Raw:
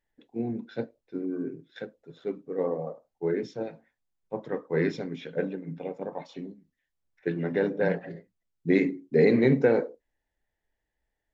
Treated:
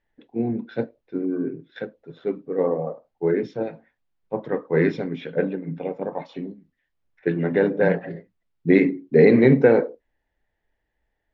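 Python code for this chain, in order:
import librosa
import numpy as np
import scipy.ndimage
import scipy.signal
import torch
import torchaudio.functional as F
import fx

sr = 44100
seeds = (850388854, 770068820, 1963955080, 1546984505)

y = scipy.signal.sosfilt(scipy.signal.butter(2, 3300.0, 'lowpass', fs=sr, output='sos'), x)
y = F.gain(torch.from_numpy(y), 6.5).numpy()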